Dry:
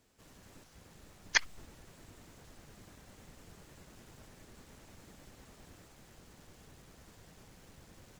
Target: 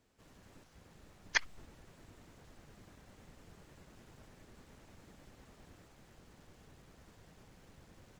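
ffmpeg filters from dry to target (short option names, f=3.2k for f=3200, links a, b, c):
-af "highshelf=f=4.8k:g=-7,volume=-2dB"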